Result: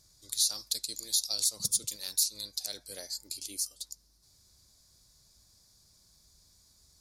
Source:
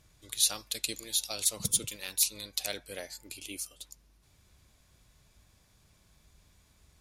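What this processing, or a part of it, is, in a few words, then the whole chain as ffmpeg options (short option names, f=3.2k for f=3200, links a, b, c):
over-bright horn tweeter: -af "highshelf=f=3.6k:t=q:w=3:g=9,alimiter=limit=-9.5dB:level=0:latency=1:release=173,volume=-5.5dB"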